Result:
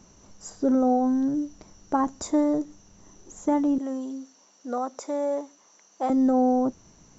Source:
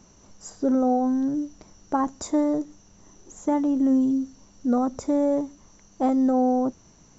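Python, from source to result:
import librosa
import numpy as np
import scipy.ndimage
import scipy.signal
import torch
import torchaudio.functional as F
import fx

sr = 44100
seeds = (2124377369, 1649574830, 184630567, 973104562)

y = fx.highpass(x, sr, hz=520.0, slope=12, at=(3.78, 6.1))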